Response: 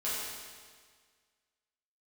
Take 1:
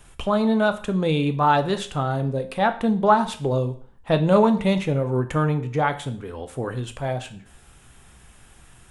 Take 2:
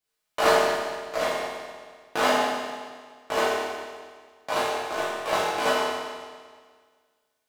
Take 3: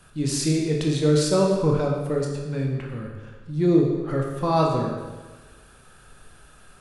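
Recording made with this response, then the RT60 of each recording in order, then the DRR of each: 2; 0.50, 1.7, 1.3 s; 8.5, -10.5, -1.0 dB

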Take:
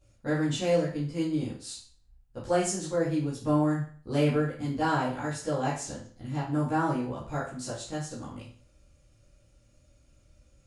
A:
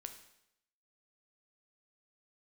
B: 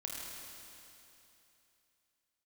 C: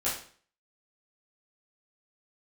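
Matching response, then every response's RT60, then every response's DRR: C; 0.80, 3.0, 0.45 s; 6.5, -3.0, -11.0 dB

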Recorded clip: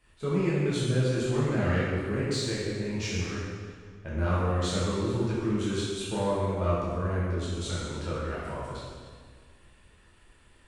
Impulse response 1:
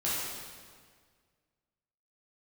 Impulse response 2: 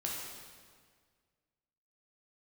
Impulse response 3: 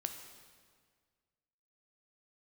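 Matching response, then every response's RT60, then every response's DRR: 1; 1.8, 1.8, 1.7 s; -9.0, -3.5, 5.5 dB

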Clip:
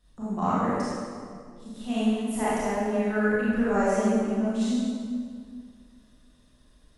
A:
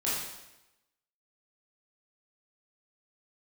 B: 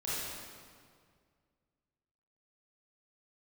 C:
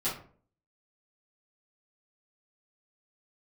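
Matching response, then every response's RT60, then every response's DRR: B; 0.95, 2.0, 0.50 s; -8.5, -10.0, -12.0 dB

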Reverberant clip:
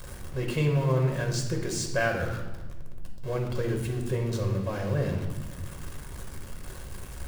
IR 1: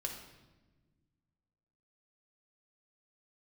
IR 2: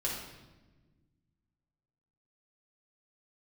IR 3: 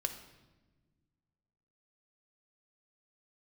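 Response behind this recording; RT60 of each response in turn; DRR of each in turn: 1; not exponential, 1.2 s, not exponential; 2.0, -4.0, 6.5 dB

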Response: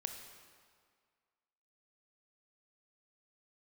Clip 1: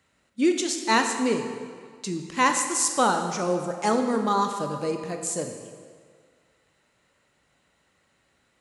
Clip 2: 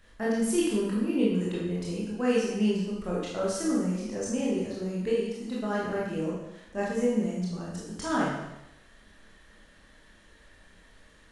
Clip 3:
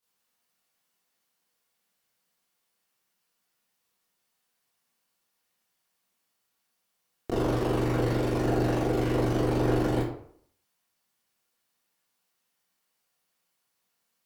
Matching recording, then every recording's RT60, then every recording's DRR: 1; 1.9, 0.90, 0.60 s; 5.0, -6.0, -11.0 dB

